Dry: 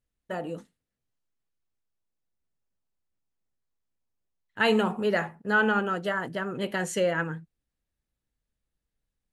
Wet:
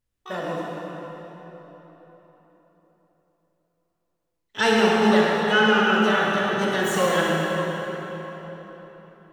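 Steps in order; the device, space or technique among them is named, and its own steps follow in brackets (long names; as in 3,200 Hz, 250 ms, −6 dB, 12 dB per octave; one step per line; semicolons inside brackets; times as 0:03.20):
shimmer-style reverb (pitch-shifted copies added +12 semitones −7 dB; convolution reverb RT60 4.3 s, pre-delay 36 ms, DRR −4 dB)
level +1 dB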